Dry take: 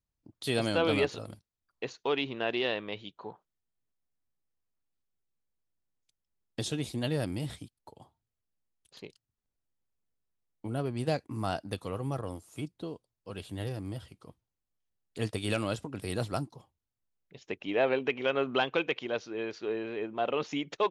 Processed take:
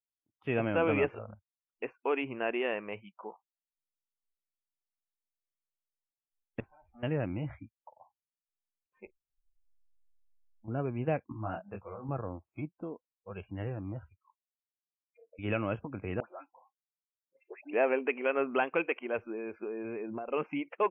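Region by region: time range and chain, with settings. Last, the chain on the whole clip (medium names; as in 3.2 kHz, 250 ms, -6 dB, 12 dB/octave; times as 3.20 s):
6.60–7.03 s: valve stage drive 48 dB, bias 0.6 + Gaussian low-pass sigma 3.9 samples + loudspeaker Doppler distortion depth 0.26 ms
9.06–10.68 s: tilt EQ -3 dB/octave + compression 2:1, threshold -59 dBFS
11.32–12.09 s: low-pass 2.6 kHz 6 dB/octave + hum notches 60/120/180/240 Hz + detune thickener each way 18 cents
14.16–15.39 s: frequency weighting A + compression 5:1, threshold -44 dBFS + auto-wah 450–4100 Hz, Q 2.4, down, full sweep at -48 dBFS
16.20–17.73 s: compression 2.5:1, threshold -42 dBFS + high-pass 240 Hz 24 dB/octave + phase dispersion highs, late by 114 ms, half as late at 1.9 kHz
19.18–20.33 s: compression 8:1, threshold -37 dBFS + bass shelf 370 Hz +9 dB
whole clip: elliptic low-pass 2.6 kHz, stop band 40 dB; spectral noise reduction 28 dB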